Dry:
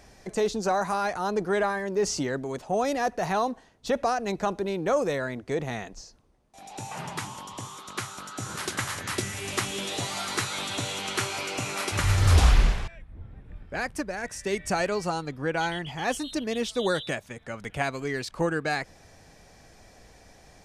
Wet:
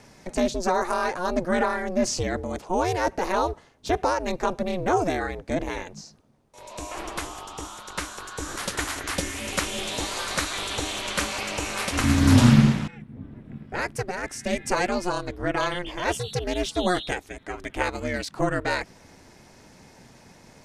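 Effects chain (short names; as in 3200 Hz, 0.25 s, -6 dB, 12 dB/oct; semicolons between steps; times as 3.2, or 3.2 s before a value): ring modulator 180 Hz; gain +5 dB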